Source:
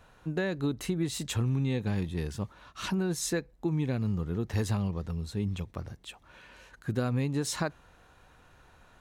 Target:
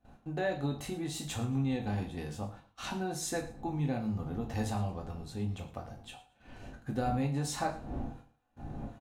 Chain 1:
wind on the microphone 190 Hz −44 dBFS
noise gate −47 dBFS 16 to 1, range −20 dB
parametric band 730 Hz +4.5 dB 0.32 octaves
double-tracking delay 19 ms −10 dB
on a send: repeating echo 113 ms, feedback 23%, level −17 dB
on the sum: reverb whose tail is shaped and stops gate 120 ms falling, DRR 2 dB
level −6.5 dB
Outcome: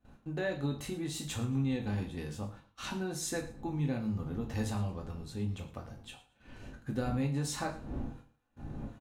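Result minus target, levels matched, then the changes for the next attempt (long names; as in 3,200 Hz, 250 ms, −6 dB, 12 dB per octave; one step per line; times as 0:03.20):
1,000 Hz band −5.0 dB
change: parametric band 730 Hz +14 dB 0.32 octaves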